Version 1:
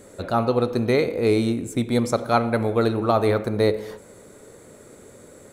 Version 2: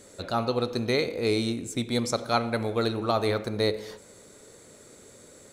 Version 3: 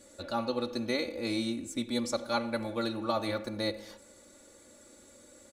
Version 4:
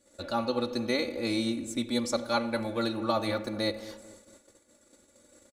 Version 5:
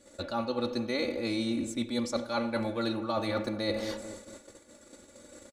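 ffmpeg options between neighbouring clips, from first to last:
-af "equalizer=f=4.9k:t=o:w=1.9:g=10.5,volume=-6.5dB"
-af "aecho=1:1:3.5:0.89,volume=-7.5dB"
-filter_complex "[0:a]asplit=2[a][b];[b]adelay=218,lowpass=f=1.3k:p=1,volume=-15dB,asplit=2[c][d];[d]adelay=218,lowpass=f=1.3k:p=1,volume=0.48,asplit=2[e][f];[f]adelay=218,lowpass=f=1.3k:p=1,volume=0.48,asplit=2[g][h];[h]adelay=218,lowpass=f=1.3k:p=1,volume=0.48[i];[a][c][e][g][i]amix=inputs=5:normalize=0,agate=range=-14dB:threshold=-54dB:ratio=16:detection=peak,volume=2.5dB"
-af "highshelf=f=9.9k:g=-9.5,areverse,acompressor=threshold=-37dB:ratio=6,areverse,volume=8.5dB"

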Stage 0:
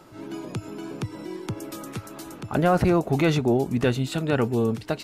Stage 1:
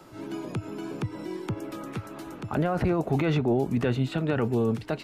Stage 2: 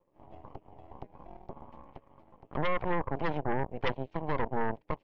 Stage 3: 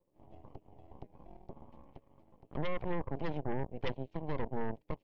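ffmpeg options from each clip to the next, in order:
-filter_complex "[0:a]acrossover=split=110|900|3400[a][b][c][d];[d]acompressor=threshold=-54dB:ratio=5[e];[a][b][c][e]amix=inputs=4:normalize=0,alimiter=limit=-16.5dB:level=0:latency=1:release=17"
-filter_complex "[0:a]asplit=3[a][b][c];[a]bandpass=f=530:t=q:w=8,volume=0dB[d];[b]bandpass=f=1.84k:t=q:w=8,volume=-6dB[e];[c]bandpass=f=2.48k:t=q:w=8,volume=-9dB[f];[d][e][f]amix=inputs=3:normalize=0,tiltshelf=f=720:g=10,aeval=exprs='0.0944*(cos(1*acos(clip(val(0)/0.0944,-1,1)))-cos(1*PI/2))+0.0422*(cos(3*acos(clip(val(0)/0.0944,-1,1)))-cos(3*PI/2))+0.0422*(cos(5*acos(clip(val(0)/0.0944,-1,1)))-cos(5*PI/2))+0.0335*(cos(6*acos(clip(val(0)/0.0944,-1,1)))-cos(6*PI/2))+0.0237*(cos(7*acos(clip(val(0)/0.0944,-1,1)))-cos(7*PI/2))':c=same"
-af "equalizer=f=1.3k:w=0.7:g=-9,volume=-2.5dB"

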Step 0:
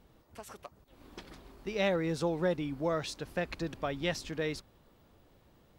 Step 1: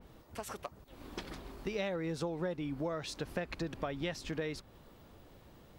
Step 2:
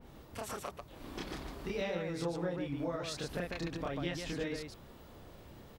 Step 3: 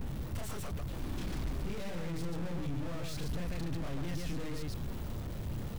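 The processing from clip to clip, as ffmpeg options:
-af "acompressor=threshold=-40dB:ratio=5,adynamicequalizer=threshold=0.001:dfrequency=3100:dqfactor=0.7:tfrequency=3100:tqfactor=0.7:attack=5:release=100:ratio=0.375:range=1.5:mode=cutabove:tftype=highshelf,volume=5.5dB"
-filter_complex "[0:a]acompressor=threshold=-43dB:ratio=1.5,asplit=2[a][b];[b]aecho=0:1:29.15|142.9:1|0.708[c];[a][c]amix=inputs=2:normalize=0"
-af "aeval=exprs='val(0)+0.5*0.00447*sgn(val(0))':c=same,aeval=exprs='(tanh(200*val(0)+0.45)-tanh(0.45))/200':c=same,bass=f=250:g=13,treble=f=4k:g=0,volume=3dB"

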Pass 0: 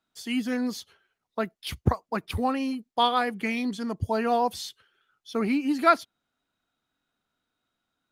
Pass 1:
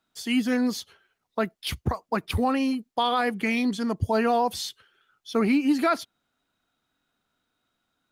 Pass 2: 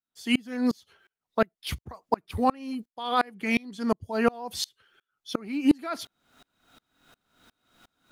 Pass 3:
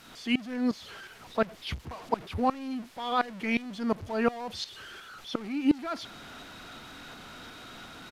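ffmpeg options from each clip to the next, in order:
-af "alimiter=limit=-18dB:level=0:latency=1:release=47,volume=4dB"
-af "areverse,acompressor=mode=upward:threshold=-43dB:ratio=2.5,areverse,aeval=exprs='val(0)*pow(10,-31*if(lt(mod(-2.8*n/s,1),2*abs(-2.8)/1000),1-mod(-2.8*n/s,1)/(2*abs(-2.8)/1000),(mod(-2.8*n/s,1)-2*abs(-2.8)/1000)/(1-2*abs(-2.8)/1000))/20)':c=same,volume=5dB"
-filter_complex "[0:a]aeval=exprs='val(0)+0.5*0.0168*sgn(val(0))':c=same,acrossover=split=5400[a][b];[b]acompressor=threshold=-57dB:ratio=4:attack=1:release=60[c];[a][c]amix=inputs=2:normalize=0,aresample=32000,aresample=44100,volume=-3.5dB"

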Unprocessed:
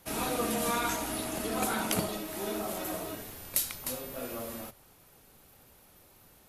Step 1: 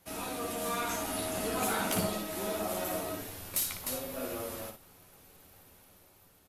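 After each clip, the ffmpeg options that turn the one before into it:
-filter_complex "[0:a]asoftclip=type=tanh:threshold=-23dB,asplit=2[a][b];[b]aecho=0:1:11|58:0.562|0.501[c];[a][c]amix=inputs=2:normalize=0,dynaudnorm=f=280:g=7:m=6dB,volume=-6.5dB"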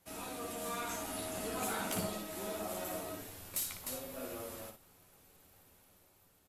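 -af "equalizer=f=7.6k:t=o:w=0.24:g=4,volume=-6dB"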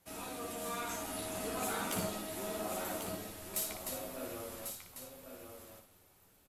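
-af "aecho=1:1:1095:0.422"

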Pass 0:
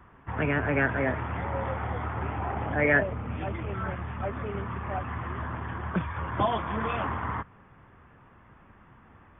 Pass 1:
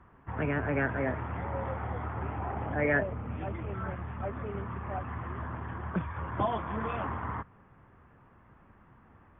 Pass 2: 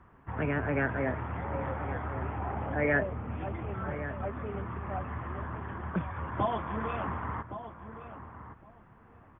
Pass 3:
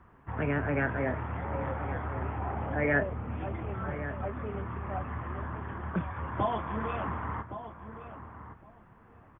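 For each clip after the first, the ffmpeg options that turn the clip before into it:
-af "lowpass=f=1.8k:p=1,volume=-3dB"
-filter_complex "[0:a]asplit=2[a][b];[b]adelay=1116,lowpass=f=2k:p=1,volume=-11dB,asplit=2[c][d];[d]adelay=1116,lowpass=f=2k:p=1,volume=0.16[e];[a][c][e]amix=inputs=3:normalize=0"
-filter_complex "[0:a]asplit=2[a][b];[b]adelay=28,volume=-13.5dB[c];[a][c]amix=inputs=2:normalize=0"

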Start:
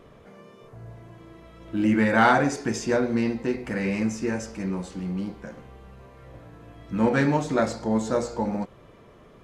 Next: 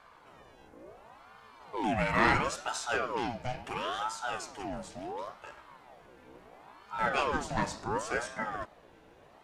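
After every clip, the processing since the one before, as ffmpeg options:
-af "tiltshelf=f=1.2k:g=-3.5,aeval=exprs='val(0)+0.002*(sin(2*PI*60*n/s)+sin(2*PI*2*60*n/s)/2+sin(2*PI*3*60*n/s)/3+sin(2*PI*4*60*n/s)/4+sin(2*PI*5*60*n/s)/5)':c=same,aeval=exprs='val(0)*sin(2*PI*750*n/s+750*0.5/0.72*sin(2*PI*0.72*n/s))':c=same,volume=-3.5dB"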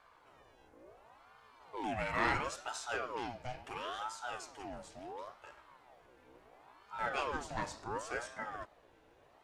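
-af "equalizer=f=190:w=2.1:g=-7,volume=-6.5dB"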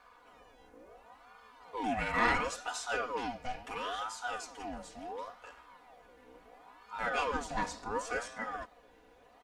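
-af "aecho=1:1:4.1:0.72,volume=2dB"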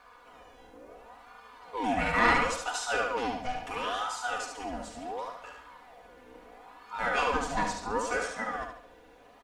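-af "aecho=1:1:72|144|216|288|360:0.562|0.214|0.0812|0.0309|0.0117,volume=4dB"

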